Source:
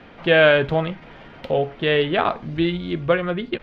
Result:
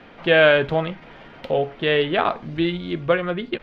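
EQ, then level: peaking EQ 66 Hz -4.5 dB 2.7 oct; 0.0 dB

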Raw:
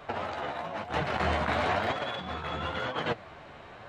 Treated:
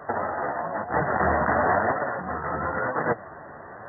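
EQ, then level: high-pass 140 Hz 6 dB/octave; brick-wall FIR low-pass 2 kHz; +7.0 dB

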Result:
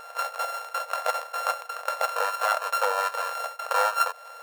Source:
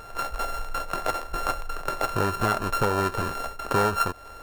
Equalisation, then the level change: brick-wall FIR high-pass 460 Hz; +1.0 dB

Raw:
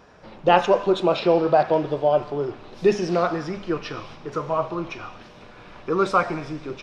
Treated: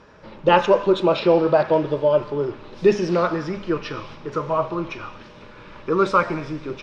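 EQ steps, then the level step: Butterworth band-stop 730 Hz, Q 6.4; distance through air 55 m; +2.5 dB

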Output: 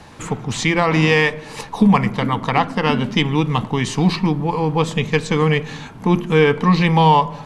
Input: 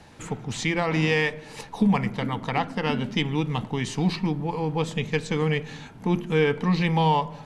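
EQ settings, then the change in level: peaking EQ 1.1 kHz +6.5 dB 0.29 oct; +7.5 dB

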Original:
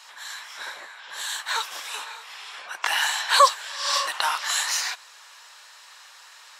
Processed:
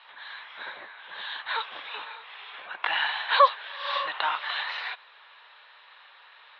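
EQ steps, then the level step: Chebyshev low-pass 3.8 kHz, order 5; distance through air 61 m; bass shelf 240 Hz +9.5 dB; -1.5 dB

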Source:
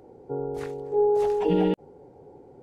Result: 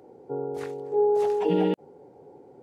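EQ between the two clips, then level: Bessel high-pass 160 Hz, order 2; 0.0 dB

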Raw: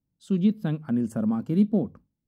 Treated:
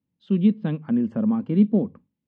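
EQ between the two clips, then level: cabinet simulation 120–3200 Hz, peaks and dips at 130 Hz -6 dB, 330 Hz -3 dB, 690 Hz -6 dB, 1.4 kHz -7 dB; +4.5 dB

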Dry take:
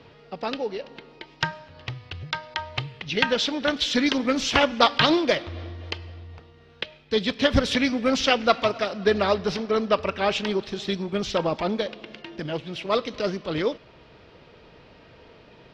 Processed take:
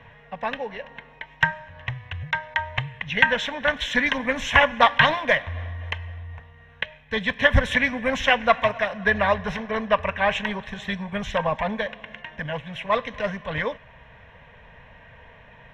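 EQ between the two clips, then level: bass shelf 71 Hz +8.5 dB; high-order bell 1.4 kHz +11 dB 1.1 oct; static phaser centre 1.3 kHz, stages 6; +2.0 dB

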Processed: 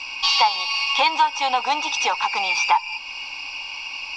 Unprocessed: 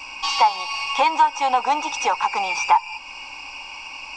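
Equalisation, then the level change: resonant low-pass 4.1 kHz, resonance Q 1.9; treble shelf 2.7 kHz +9.5 dB; -3.5 dB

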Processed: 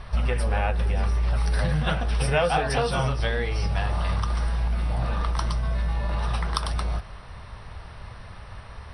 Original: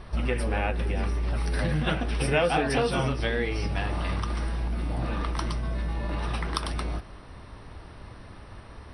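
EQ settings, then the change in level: treble shelf 9.3 kHz -6 dB; dynamic bell 2.3 kHz, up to -6 dB, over -47 dBFS, Q 1.3; peaking EQ 300 Hz -14.5 dB 0.93 oct; +5.0 dB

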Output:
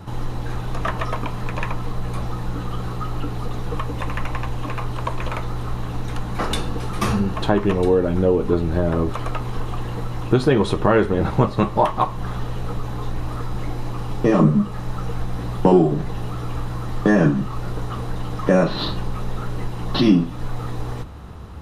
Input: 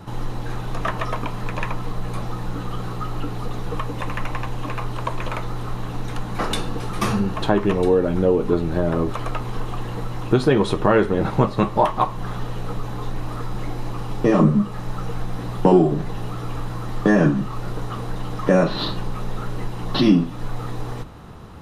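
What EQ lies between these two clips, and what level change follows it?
peaking EQ 66 Hz +10 dB 0.75 oct; 0.0 dB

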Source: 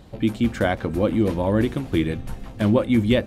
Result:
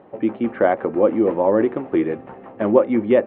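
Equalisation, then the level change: distance through air 400 m; cabinet simulation 370–3300 Hz, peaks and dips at 390 Hz +5 dB, 560 Hz +3 dB, 830 Hz +5 dB, 1.2 kHz +5 dB, 1.9 kHz +5 dB, 2.7 kHz +3 dB; tilt shelf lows +7 dB, about 1.5 kHz; 0.0 dB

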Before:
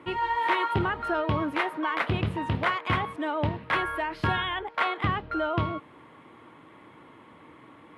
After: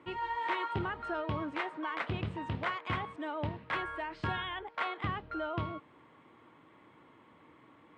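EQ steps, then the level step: brick-wall FIR low-pass 9 kHz; -8.5 dB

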